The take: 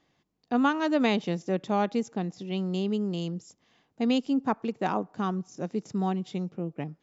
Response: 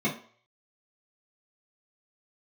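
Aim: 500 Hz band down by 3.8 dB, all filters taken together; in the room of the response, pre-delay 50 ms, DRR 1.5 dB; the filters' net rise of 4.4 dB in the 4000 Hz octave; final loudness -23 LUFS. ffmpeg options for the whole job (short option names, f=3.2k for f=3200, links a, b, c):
-filter_complex "[0:a]equalizer=f=500:t=o:g=-5,equalizer=f=4k:t=o:g=6,asplit=2[a][b];[1:a]atrim=start_sample=2205,adelay=50[c];[b][c]afir=irnorm=-1:irlink=0,volume=-12dB[d];[a][d]amix=inputs=2:normalize=0"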